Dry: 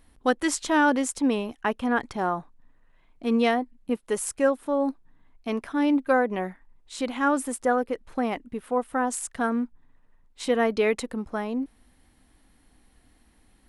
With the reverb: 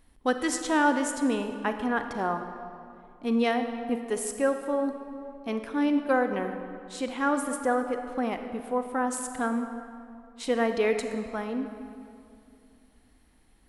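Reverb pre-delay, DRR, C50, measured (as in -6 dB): 31 ms, 7.0 dB, 7.5 dB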